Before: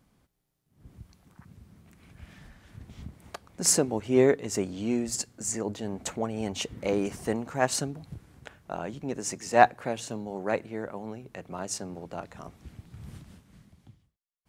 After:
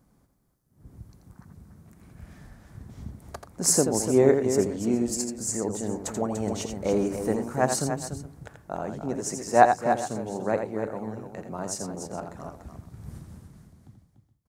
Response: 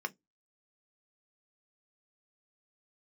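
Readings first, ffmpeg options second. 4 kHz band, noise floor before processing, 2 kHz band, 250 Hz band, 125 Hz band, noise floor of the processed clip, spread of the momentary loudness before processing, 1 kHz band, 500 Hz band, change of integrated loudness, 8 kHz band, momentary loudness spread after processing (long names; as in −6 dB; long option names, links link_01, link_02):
−1.5 dB, −78 dBFS, −1.0 dB, +3.5 dB, +3.5 dB, −66 dBFS, 23 LU, +3.0 dB, +3.5 dB, +2.5 dB, +2.0 dB, 23 LU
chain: -af "equalizer=frequency=2900:width=1.1:gain=-11.5,aecho=1:1:84|292|420:0.447|0.376|0.126,volume=2.5dB"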